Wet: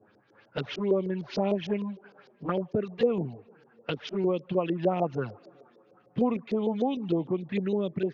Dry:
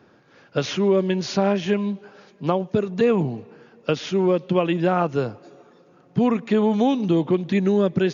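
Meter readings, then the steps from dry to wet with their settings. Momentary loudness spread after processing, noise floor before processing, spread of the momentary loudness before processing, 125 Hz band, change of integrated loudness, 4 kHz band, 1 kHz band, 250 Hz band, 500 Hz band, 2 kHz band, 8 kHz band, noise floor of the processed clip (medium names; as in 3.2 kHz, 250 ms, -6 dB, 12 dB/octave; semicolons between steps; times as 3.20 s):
11 LU, -55 dBFS, 9 LU, -9.0 dB, -8.0 dB, -9.0 dB, -8.0 dB, -8.5 dB, -7.0 dB, -10.0 dB, no reading, -63 dBFS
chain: touch-sensitive flanger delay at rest 10.1 ms, full sweep at -15 dBFS; gain riding 0.5 s; LFO low-pass saw up 6.6 Hz 430–5600 Hz; trim -7.5 dB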